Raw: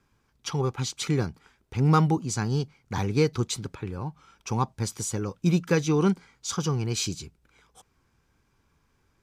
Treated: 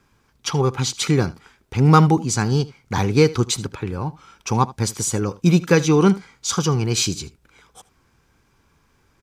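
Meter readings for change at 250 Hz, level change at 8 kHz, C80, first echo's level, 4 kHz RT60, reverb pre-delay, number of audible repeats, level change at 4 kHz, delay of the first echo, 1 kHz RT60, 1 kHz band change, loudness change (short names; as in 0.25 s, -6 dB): +7.5 dB, +8.5 dB, none, -19.5 dB, none, none, 1, +8.5 dB, 77 ms, none, +8.5 dB, +7.5 dB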